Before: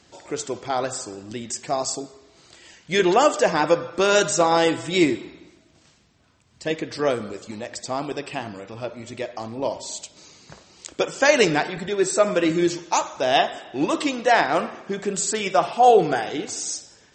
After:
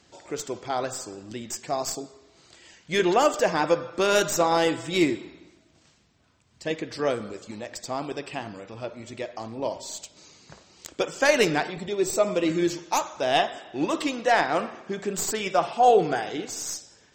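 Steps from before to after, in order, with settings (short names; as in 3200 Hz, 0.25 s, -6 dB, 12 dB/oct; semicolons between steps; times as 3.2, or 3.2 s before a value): tracing distortion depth 0.026 ms; 11.71–12.48 bell 1600 Hz -11.5 dB 0.4 oct; gain -3.5 dB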